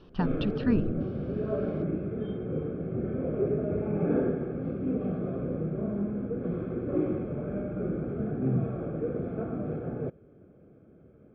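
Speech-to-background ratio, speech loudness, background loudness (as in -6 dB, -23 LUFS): 0.0 dB, -31.5 LUFS, -31.5 LUFS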